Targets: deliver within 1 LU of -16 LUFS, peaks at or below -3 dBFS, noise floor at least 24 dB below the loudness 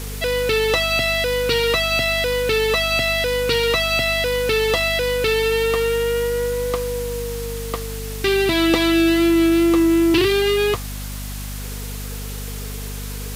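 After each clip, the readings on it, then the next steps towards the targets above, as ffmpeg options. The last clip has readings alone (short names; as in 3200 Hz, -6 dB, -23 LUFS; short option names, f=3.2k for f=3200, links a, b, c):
hum 50 Hz; harmonics up to 250 Hz; hum level -27 dBFS; noise floor -29 dBFS; noise floor target -43 dBFS; loudness -18.5 LUFS; peak -3.5 dBFS; loudness target -16.0 LUFS
-> -af "bandreject=f=50:t=h:w=6,bandreject=f=100:t=h:w=6,bandreject=f=150:t=h:w=6,bandreject=f=200:t=h:w=6,bandreject=f=250:t=h:w=6"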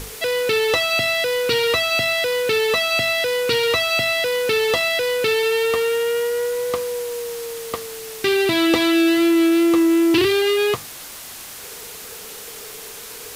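hum none; noise floor -36 dBFS; noise floor target -43 dBFS
-> -af "afftdn=nr=7:nf=-36"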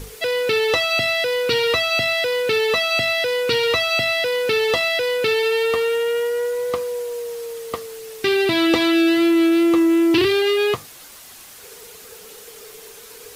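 noise floor -42 dBFS; noise floor target -43 dBFS
-> -af "afftdn=nr=6:nf=-42"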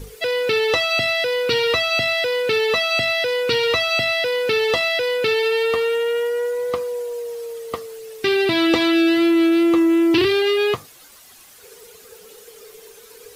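noise floor -46 dBFS; loudness -18.5 LUFS; peak -3.5 dBFS; loudness target -16.0 LUFS
-> -af "volume=2.5dB,alimiter=limit=-3dB:level=0:latency=1"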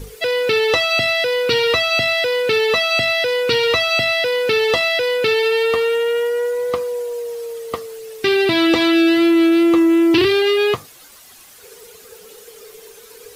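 loudness -16.0 LUFS; peak -3.0 dBFS; noise floor -43 dBFS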